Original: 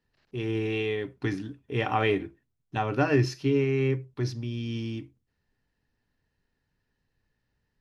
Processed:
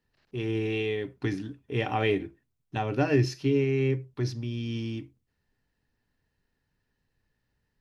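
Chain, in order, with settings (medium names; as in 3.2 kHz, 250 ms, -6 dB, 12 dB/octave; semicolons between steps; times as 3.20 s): dynamic bell 1.2 kHz, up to -7 dB, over -44 dBFS, Q 1.6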